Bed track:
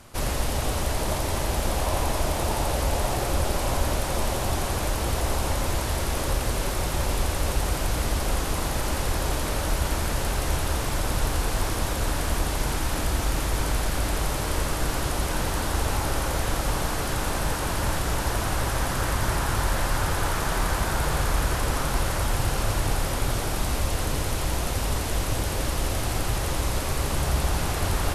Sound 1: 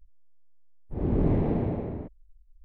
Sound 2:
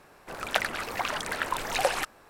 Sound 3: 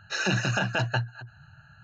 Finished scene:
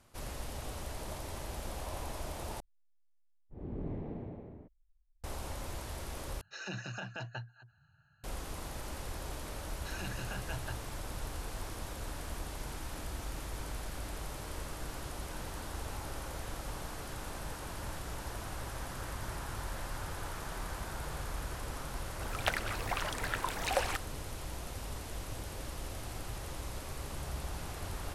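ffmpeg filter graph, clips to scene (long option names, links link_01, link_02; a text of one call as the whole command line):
ffmpeg -i bed.wav -i cue0.wav -i cue1.wav -i cue2.wav -filter_complex "[3:a]asplit=2[link_01][link_02];[0:a]volume=-15.5dB,asplit=3[link_03][link_04][link_05];[link_03]atrim=end=2.604[link_06];[1:a]atrim=end=2.64,asetpts=PTS-STARTPTS,volume=-15.5dB[link_07];[link_04]atrim=start=5.236:end=6.414[link_08];[link_01]atrim=end=1.83,asetpts=PTS-STARTPTS,volume=-15.5dB[link_09];[link_05]atrim=start=8.236[link_10];[link_02]atrim=end=1.83,asetpts=PTS-STARTPTS,volume=-17dB,afade=type=in:duration=0.004:curve=hsin,afade=type=out:start_time=1.826:duration=0.004:curve=hsin,adelay=9740[link_11];[2:a]atrim=end=2.29,asetpts=PTS-STARTPTS,volume=-6dB,afade=type=in:duration=0.004:curve=hsin,afade=type=out:start_time=2.286:duration=0.004:curve=hsin,adelay=21920[link_12];[link_06][link_07]acrossfade=duration=0.004:curve1=hsin:curve2=hsin[link_13];[link_13][link_08]acrossfade=duration=0.004:curve1=hsin:curve2=hsin[link_14];[link_14][link_09]acrossfade=duration=0.004:curve1=hsin:curve2=hsin[link_15];[link_15][link_10]acrossfade=duration=0.004:curve1=hsin:curve2=hsin[link_16];[link_16][link_11][link_12]amix=inputs=3:normalize=0" out.wav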